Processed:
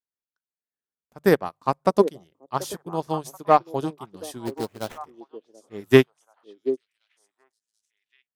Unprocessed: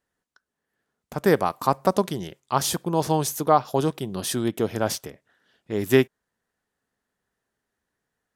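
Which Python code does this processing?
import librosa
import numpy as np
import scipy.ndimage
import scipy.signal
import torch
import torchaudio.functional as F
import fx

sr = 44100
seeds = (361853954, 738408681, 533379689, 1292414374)

p1 = fx.env_lowpass(x, sr, base_hz=2800.0, full_db=-20.0, at=(1.37, 2.17))
p2 = fx.hum_notches(p1, sr, base_hz=50, count=3)
p3 = fx.clip_asym(p2, sr, top_db=-15.0, bottom_db=-8.5)
p4 = p2 + F.gain(torch.from_numpy(p3), -4.0).numpy()
p5 = fx.sample_hold(p4, sr, seeds[0], rate_hz=4600.0, jitter_pct=20, at=(4.45, 5.05), fade=0.02)
p6 = fx.echo_stepped(p5, sr, ms=733, hz=390.0, octaves=1.4, feedback_pct=70, wet_db=-3.0)
p7 = fx.upward_expand(p6, sr, threshold_db=-29.0, expansion=2.5)
y = F.gain(torch.from_numpy(p7), 1.0).numpy()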